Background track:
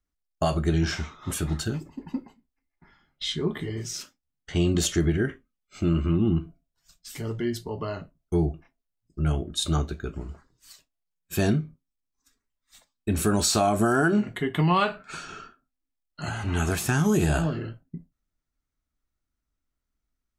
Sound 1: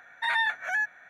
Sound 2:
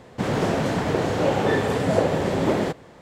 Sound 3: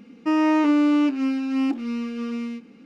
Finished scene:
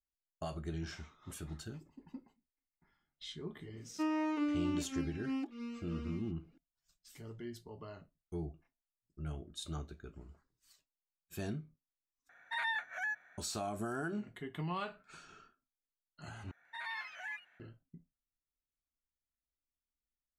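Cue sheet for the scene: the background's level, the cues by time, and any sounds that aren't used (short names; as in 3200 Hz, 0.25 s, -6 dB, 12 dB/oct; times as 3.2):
background track -17 dB
3.73 add 3 -13 dB + reverb removal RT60 0.91 s
12.29 replace with 1 -10 dB
16.51 replace with 1 -17 dB + echoes that change speed 0.143 s, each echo +3 st, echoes 3, each echo -6 dB
not used: 2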